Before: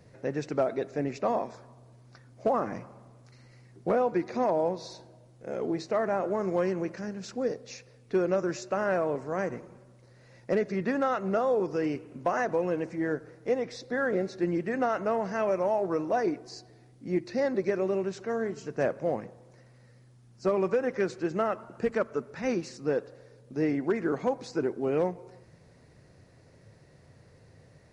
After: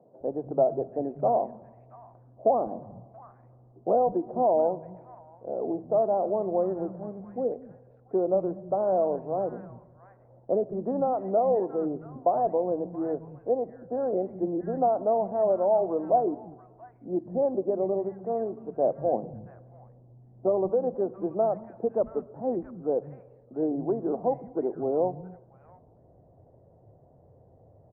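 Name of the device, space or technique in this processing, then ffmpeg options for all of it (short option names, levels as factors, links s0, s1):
under water: -filter_complex "[0:a]lowpass=f=870:w=0.5412,lowpass=f=870:w=1.3066,equalizer=f=710:t=o:w=0.58:g=8,asettb=1/sr,asplit=3[s0][s1][s2];[s0]atrim=end=19.134[s3];[s1]atrim=start=19.13:end=20.46,asetpts=PTS-STARTPTS,afade=t=in:d=0.004:c=qsin,afade=t=out:st=1.326:d=0.004:c=qsin,tiltshelf=f=970:g=6[s4];[s2]atrim=start=20.456[s5];[s3][s4]acrossfade=d=0.004:c1=hsin:c2=qsin[s6];[s6][s5]acrossfade=d=0.004:c1=qsin:c2=hsin,acrossover=split=180|1500[s7][s8][s9];[s7]adelay=200[s10];[s9]adelay=680[s11];[s10][s8][s11]amix=inputs=3:normalize=0"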